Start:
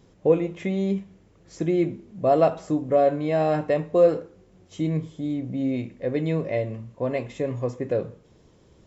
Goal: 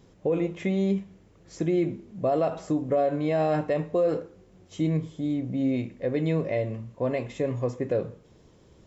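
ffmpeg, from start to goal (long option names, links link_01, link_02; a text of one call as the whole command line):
ffmpeg -i in.wav -af "alimiter=limit=-16.5dB:level=0:latency=1:release=69" out.wav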